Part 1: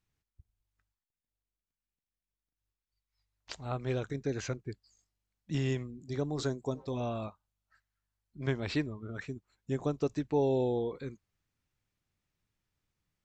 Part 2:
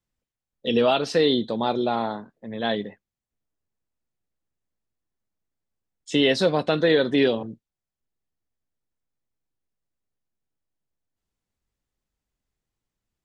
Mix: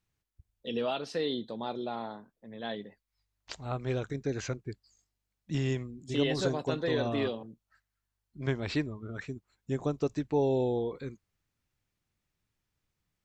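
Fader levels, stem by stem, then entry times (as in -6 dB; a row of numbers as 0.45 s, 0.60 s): +1.0 dB, -12.0 dB; 0.00 s, 0.00 s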